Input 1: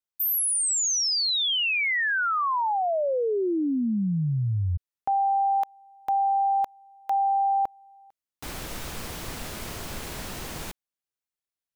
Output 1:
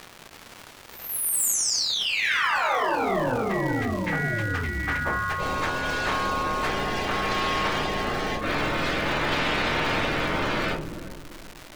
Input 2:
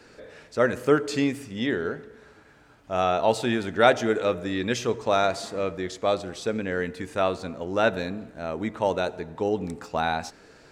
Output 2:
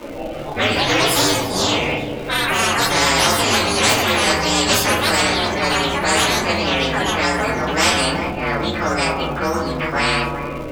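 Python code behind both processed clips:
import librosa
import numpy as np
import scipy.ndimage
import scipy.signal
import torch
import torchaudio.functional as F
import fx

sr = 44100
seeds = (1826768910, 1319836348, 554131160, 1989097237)

y = fx.partial_stretch(x, sr, pct=128)
y = fx.low_shelf(y, sr, hz=130.0, db=-10.5)
y = fx.room_shoebox(y, sr, seeds[0], volume_m3=140.0, walls='furnished', distance_m=2.6)
y = fx.rotary(y, sr, hz=0.6)
y = fx.echo_feedback(y, sr, ms=385, feedback_pct=39, wet_db=-22.5)
y = fx.env_lowpass(y, sr, base_hz=1700.0, full_db=-20.0)
y = fx.dmg_crackle(y, sr, seeds[1], per_s=410.0, level_db=-50.0)
y = fx.high_shelf(y, sr, hz=3900.0, db=-10.5)
y = fx.echo_pitch(y, sr, ms=330, semitones=5, count=2, db_per_echo=-6.0)
y = fx.spectral_comp(y, sr, ratio=4.0)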